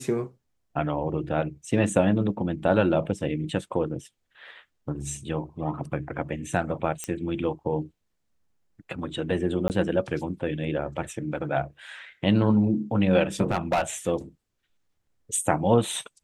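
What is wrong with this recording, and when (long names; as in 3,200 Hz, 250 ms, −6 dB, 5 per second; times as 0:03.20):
0:07.04: click −15 dBFS
0:09.68–0:09.70: drop-out 19 ms
0:13.51–0:13.82: clipping −18.5 dBFS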